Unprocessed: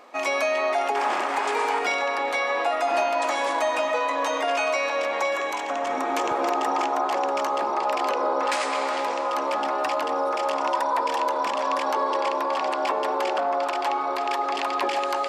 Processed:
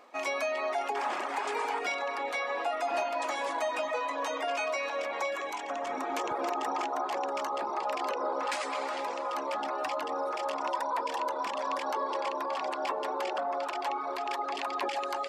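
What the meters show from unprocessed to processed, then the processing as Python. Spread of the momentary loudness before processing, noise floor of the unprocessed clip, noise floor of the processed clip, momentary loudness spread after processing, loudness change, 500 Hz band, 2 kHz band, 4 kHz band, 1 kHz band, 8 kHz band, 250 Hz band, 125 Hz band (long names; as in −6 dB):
2 LU, −27 dBFS, −36 dBFS, 2 LU, −8.0 dB, −8.0 dB, −8.0 dB, −7.5 dB, −8.0 dB, −7.5 dB, −8.0 dB, can't be measured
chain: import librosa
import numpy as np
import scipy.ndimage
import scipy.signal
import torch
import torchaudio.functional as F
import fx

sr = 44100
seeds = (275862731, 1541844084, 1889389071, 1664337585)

y = fx.dereverb_blind(x, sr, rt60_s=0.53)
y = y * librosa.db_to_amplitude(-6.5)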